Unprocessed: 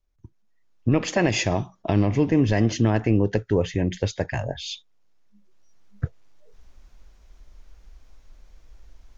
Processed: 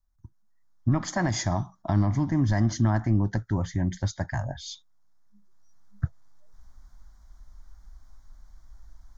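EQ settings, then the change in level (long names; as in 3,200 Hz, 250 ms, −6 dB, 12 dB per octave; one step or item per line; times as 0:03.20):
phaser with its sweep stopped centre 1,100 Hz, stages 4
0.0 dB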